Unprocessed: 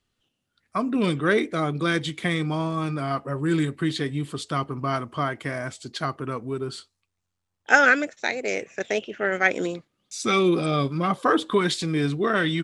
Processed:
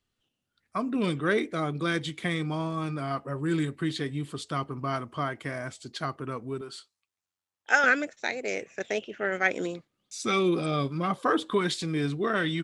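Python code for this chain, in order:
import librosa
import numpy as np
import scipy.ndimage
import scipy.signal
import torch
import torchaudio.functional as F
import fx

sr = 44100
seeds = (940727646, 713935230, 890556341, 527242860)

y = fx.highpass(x, sr, hz=620.0, slope=6, at=(6.61, 7.84))
y = F.gain(torch.from_numpy(y), -4.5).numpy()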